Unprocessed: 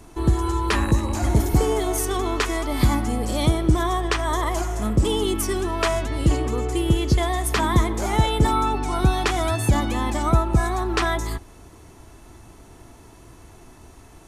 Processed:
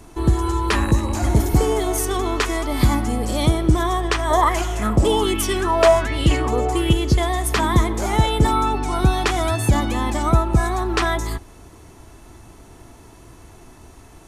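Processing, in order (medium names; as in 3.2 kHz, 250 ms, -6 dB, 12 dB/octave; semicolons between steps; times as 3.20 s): 4.30–6.93 s: sweeping bell 1.3 Hz 610–3300 Hz +12 dB; trim +2 dB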